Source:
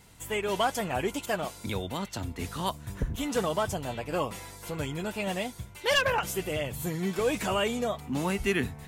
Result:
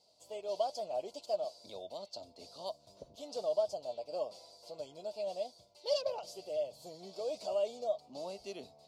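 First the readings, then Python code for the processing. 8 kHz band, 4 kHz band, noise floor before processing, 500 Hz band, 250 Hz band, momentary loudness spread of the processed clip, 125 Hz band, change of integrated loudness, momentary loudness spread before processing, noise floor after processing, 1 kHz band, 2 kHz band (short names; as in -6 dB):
-16.0 dB, -11.5 dB, -48 dBFS, -4.5 dB, -22.0 dB, 14 LU, under -25 dB, -8.5 dB, 8 LU, -65 dBFS, -12.0 dB, -27.5 dB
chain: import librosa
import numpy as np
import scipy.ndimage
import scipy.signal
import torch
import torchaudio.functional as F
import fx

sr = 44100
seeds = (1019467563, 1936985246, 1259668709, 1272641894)

y = fx.double_bandpass(x, sr, hz=1700.0, octaves=2.9)
y = y * 10.0 ** (1.0 / 20.0)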